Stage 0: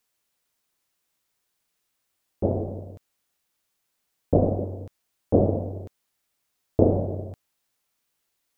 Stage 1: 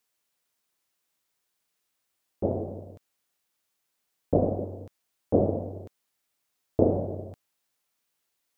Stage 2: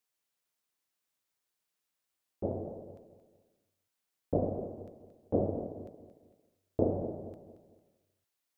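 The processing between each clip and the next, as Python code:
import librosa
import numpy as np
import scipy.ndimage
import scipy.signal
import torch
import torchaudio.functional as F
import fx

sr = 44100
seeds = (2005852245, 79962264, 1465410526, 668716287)

y1 = fx.low_shelf(x, sr, hz=120.0, db=-6.5)
y1 = y1 * 10.0 ** (-2.0 / 20.0)
y2 = fx.echo_feedback(y1, sr, ms=226, feedback_pct=37, wet_db=-11.5)
y2 = y2 * 10.0 ** (-7.0 / 20.0)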